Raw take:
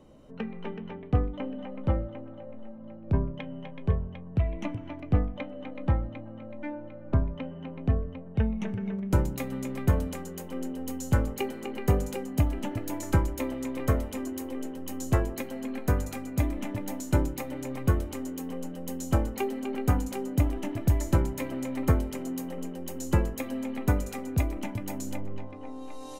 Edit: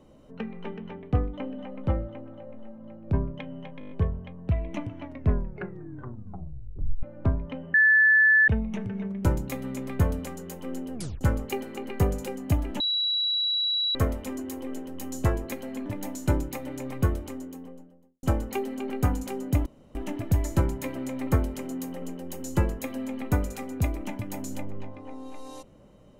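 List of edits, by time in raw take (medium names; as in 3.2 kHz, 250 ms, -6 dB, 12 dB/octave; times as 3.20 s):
3.79 s: stutter 0.02 s, 7 plays
4.88 s: tape stop 2.03 s
7.62–8.36 s: bleep 1.74 kHz -15 dBFS
10.82 s: tape stop 0.27 s
12.68–13.83 s: bleep 3.91 kHz -23 dBFS
15.74–16.71 s: delete
17.86–19.08 s: studio fade out
20.51 s: insert room tone 0.29 s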